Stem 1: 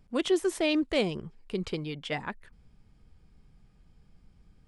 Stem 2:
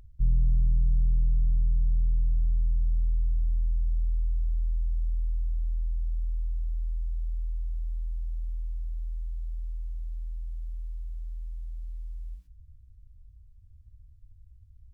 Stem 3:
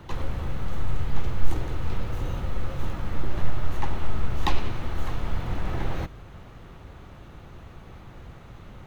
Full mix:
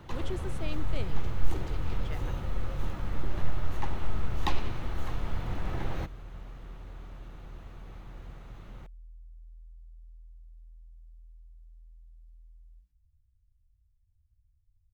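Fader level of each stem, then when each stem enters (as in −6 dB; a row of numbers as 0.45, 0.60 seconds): −14.0, −16.0, −4.5 decibels; 0.00, 0.45, 0.00 seconds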